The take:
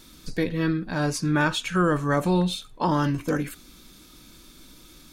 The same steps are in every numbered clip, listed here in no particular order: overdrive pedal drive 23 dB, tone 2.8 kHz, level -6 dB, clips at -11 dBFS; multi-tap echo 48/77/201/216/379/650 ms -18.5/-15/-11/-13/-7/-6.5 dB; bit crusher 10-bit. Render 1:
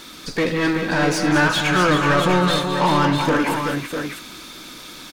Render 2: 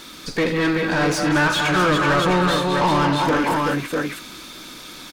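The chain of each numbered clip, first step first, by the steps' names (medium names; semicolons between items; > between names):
bit crusher > overdrive pedal > multi-tap echo; multi-tap echo > bit crusher > overdrive pedal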